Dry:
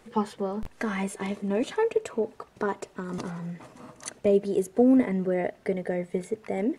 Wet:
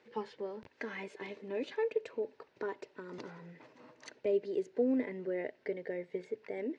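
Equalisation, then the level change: tone controls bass -10 dB, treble -3 dB; dynamic bell 990 Hz, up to -3 dB, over -38 dBFS, Q 0.81; cabinet simulation 110–5100 Hz, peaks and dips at 200 Hz -8 dB, 710 Hz -9 dB, 1.2 kHz -10 dB, 3.3 kHz -4 dB; -5.0 dB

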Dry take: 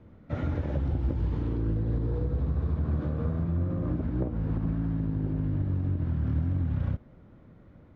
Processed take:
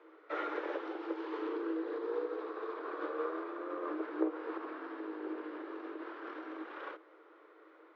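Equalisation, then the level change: rippled Chebyshev high-pass 310 Hz, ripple 9 dB; distance through air 210 m; treble shelf 2.1 kHz +12 dB; +6.5 dB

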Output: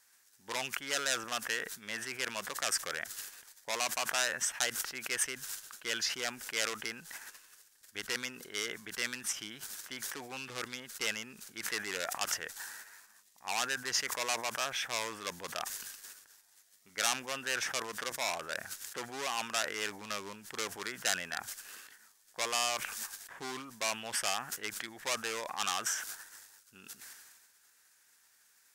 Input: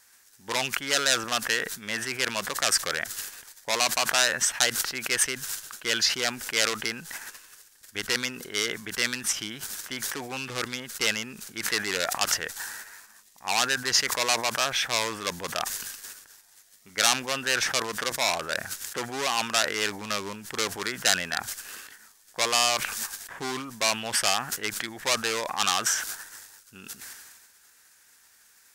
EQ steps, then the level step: bass shelf 320 Hz -2.5 dB; dynamic bell 4.2 kHz, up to -5 dB, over -39 dBFS, Q 3.1; bass shelf 130 Hz -3.5 dB; -8.0 dB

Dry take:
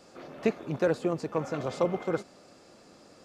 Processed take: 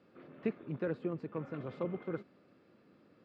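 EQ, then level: high-pass 100 Hz; distance through air 470 m; peaking EQ 740 Hz -10.5 dB 1.1 oct; -4.5 dB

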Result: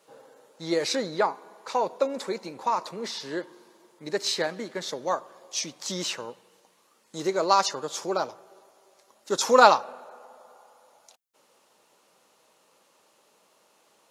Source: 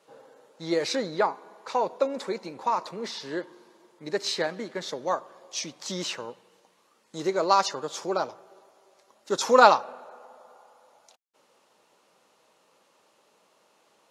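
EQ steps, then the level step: treble shelf 7.6 kHz +8.5 dB; 0.0 dB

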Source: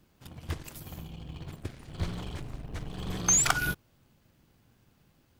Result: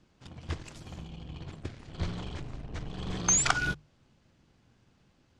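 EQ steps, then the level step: low-pass 7.3 kHz 24 dB/octave; hum notches 50/100/150 Hz; 0.0 dB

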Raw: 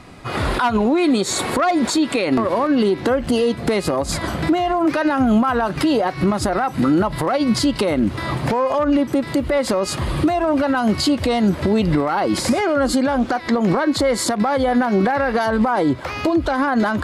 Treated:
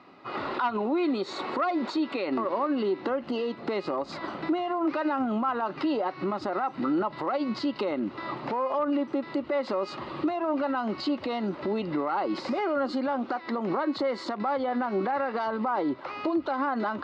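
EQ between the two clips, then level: cabinet simulation 400–3500 Hz, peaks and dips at 480 Hz -7 dB, 690 Hz -7 dB, 1 kHz -3 dB, 1.6 kHz -9 dB, 2.3 kHz -9 dB, 3.3 kHz -10 dB; band-stop 1.8 kHz, Q 22; -3.0 dB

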